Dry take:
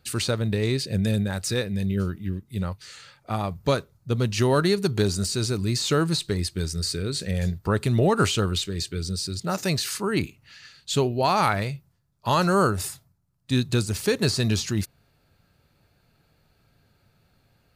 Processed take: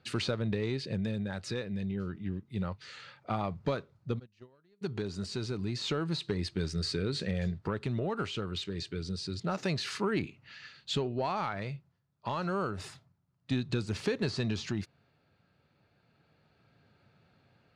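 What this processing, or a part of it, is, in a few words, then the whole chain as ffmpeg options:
AM radio: -filter_complex "[0:a]highpass=110,lowpass=3600,acompressor=threshold=-26dB:ratio=6,asoftclip=type=tanh:threshold=-18dB,tremolo=f=0.29:d=0.38,asplit=3[link_01][link_02][link_03];[link_01]afade=type=out:start_time=4.18:duration=0.02[link_04];[link_02]agate=range=-34dB:threshold=-27dB:ratio=16:detection=peak,afade=type=in:start_time=4.18:duration=0.02,afade=type=out:start_time=4.81:duration=0.02[link_05];[link_03]afade=type=in:start_time=4.81:duration=0.02[link_06];[link_04][link_05][link_06]amix=inputs=3:normalize=0"

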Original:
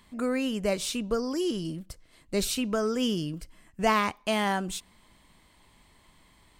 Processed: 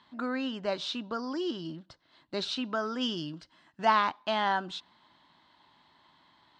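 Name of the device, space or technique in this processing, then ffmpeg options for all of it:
kitchen radio: -filter_complex "[0:a]asettb=1/sr,asplit=3[link_01][link_02][link_03];[link_01]atrim=end=3.014[link_04];[link_02]atrim=start=3.01:end=3.85,asetpts=PTS-STARTPTS,afade=type=in:duration=0.004:curve=qsin,afade=type=out:start_time=0.836:duration=0.004:curve=qsin,aemphasis=mode=production:type=cd[link_05];[link_03]atrim=start=3.846[link_06];[link_04][link_05]acrossfade=duration=0.004:curve1=hsin:curve2=qsin[link_07];[link_07][link_06]acrossfade=duration=0.004:curve1=qsin:curve2=hsin,highpass=180,equalizer=frequency=200:width_type=q:width=4:gain=-6,equalizer=frequency=460:width_type=q:width=4:gain=-10,equalizer=frequency=910:width_type=q:width=4:gain=6,equalizer=frequency=1500:width_type=q:width=4:gain=5,equalizer=frequency=2300:width_type=q:width=4:gain=-8,equalizer=frequency=3800:width_type=q:width=4:gain=5,lowpass=frequency=4600:width=0.5412,lowpass=frequency=4600:width=1.3066,volume=-1.5dB"

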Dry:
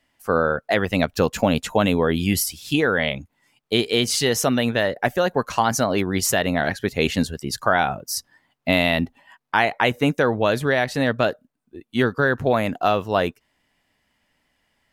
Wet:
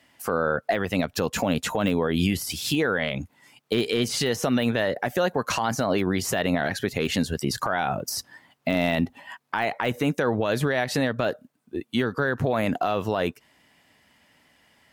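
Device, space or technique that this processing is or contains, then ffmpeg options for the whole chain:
podcast mastering chain: -af "highpass=83,deesser=0.6,acompressor=threshold=-24dB:ratio=4,alimiter=limit=-22dB:level=0:latency=1:release=118,volume=9dB" -ar 48000 -c:a libmp3lame -b:a 96k

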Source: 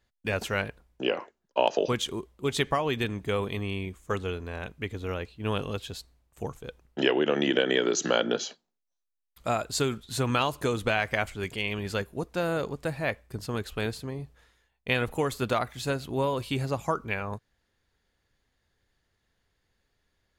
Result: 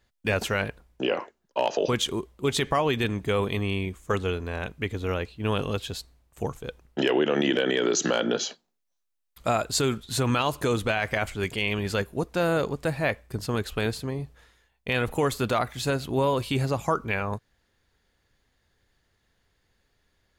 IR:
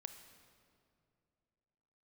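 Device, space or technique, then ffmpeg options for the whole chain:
clipper into limiter: -af "asoftclip=type=hard:threshold=-11.5dB,alimiter=limit=-18dB:level=0:latency=1:release=18,volume=4.5dB"

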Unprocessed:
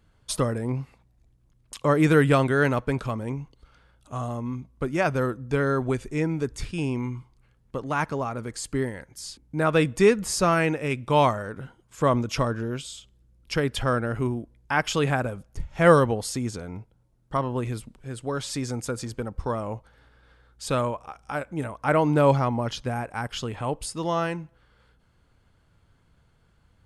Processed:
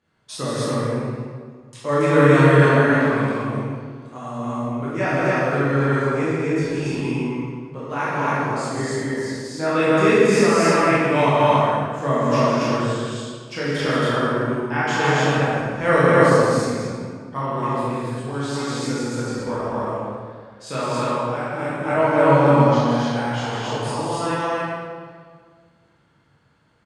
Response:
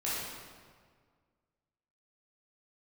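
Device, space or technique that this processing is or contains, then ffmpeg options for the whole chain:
stadium PA: -filter_complex "[0:a]highpass=140,lowpass=8000,equalizer=frequency=1800:width_type=o:width=0.43:gain=3,aecho=1:1:160.3|224.5|277:0.562|0.282|1[link_01];[1:a]atrim=start_sample=2205[link_02];[link_01][link_02]afir=irnorm=-1:irlink=0,volume=-4dB"

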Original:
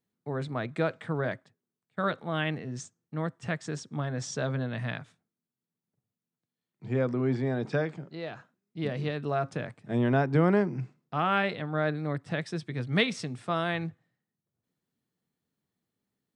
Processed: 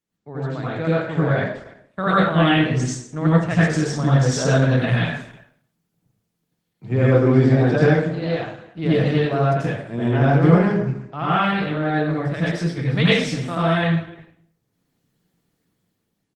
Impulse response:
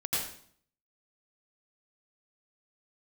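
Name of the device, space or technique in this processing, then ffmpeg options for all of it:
speakerphone in a meeting room: -filter_complex "[0:a]asettb=1/sr,asplit=3[link_01][link_02][link_03];[link_01]atrim=end=1.034[link_04];[link_02]atrim=start=1.03:end=2.09,asetpts=PTS-STARTPTS,afade=type=in:duration=0.004:curve=qsin,afade=type=out:start_time=1.056:duration=0.004:curve=qsin,asplit=2[link_05][link_06];[link_06]adelay=27,volume=-12dB[link_07];[link_05][link_07]amix=inputs=2:normalize=0,atrim=end_sample=46746[link_08];[link_03]atrim=start=2.086[link_09];[link_04][link_08]acrossfade=duration=0.004:curve1=hsin:curve2=qsin[link_10];[link_10][link_09]acrossfade=duration=0.004:curve1=qsin:curve2=hsin[link_11];[1:a]atrim=start_sample=2205[link_12];[link_11][link_12]afir=irnorm=-1:irlink=0,asplit=2[link_13][link_14];[link_14]adelay=300,highpass=300,lowpass=3400,asoftclip=type=hard:threshold=-11.5dB,volume=-22dB[link_15];[link_13][link_15]amix=inputs=2:normalize=0,dynaudnorm=framelen=350:gausssize=7:maxgain=11.5dB,volume=-1dB" -ar 48000 -c:a libopus -b:a 16k

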